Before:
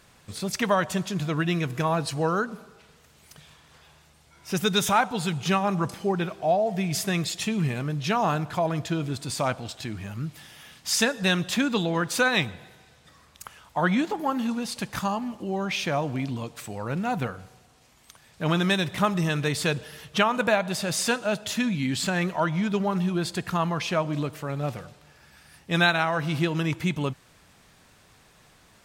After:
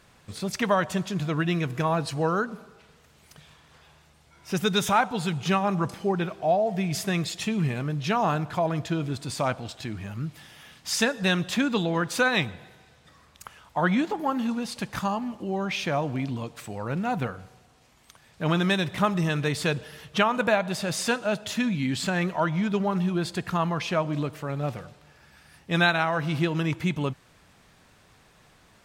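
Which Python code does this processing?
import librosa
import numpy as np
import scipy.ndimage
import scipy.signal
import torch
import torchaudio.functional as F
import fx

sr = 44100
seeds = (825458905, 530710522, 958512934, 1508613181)

y = fx.high_shelf(x, sr, hz=4700.0, db=-5.0)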